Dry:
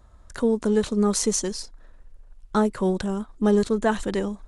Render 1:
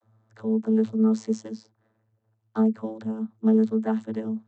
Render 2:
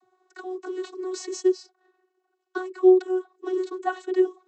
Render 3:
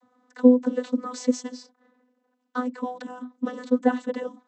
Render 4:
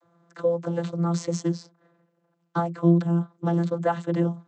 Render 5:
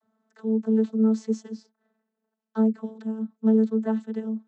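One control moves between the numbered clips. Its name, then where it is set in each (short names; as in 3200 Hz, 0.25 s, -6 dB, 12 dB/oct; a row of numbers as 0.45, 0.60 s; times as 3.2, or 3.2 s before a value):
vocoder, frequency: 110, 370, 250, 170, 220 Hz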